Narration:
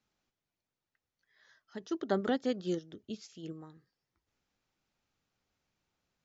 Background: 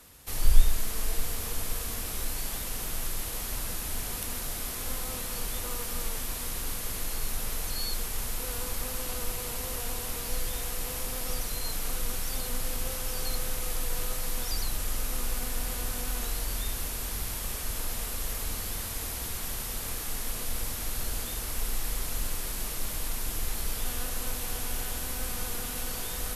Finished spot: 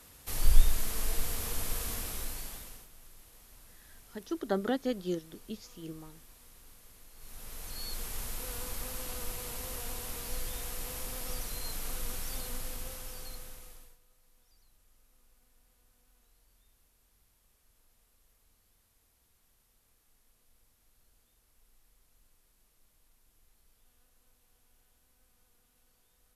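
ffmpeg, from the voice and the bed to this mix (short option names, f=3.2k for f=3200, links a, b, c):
-filter_complex "[0:a]adelay=2400,volume=0dB[a];[1:a]volume=15dB,afade=t=out:st=1.9:d=0.98:silence=0.0944061,afade=t=in:st=7.15:d=0.95:silence=0.141254,afade=t=out:st=12.34:d=1.64:silence=0.0316228[b];[a][b]amix=inputs=2:normalize=0"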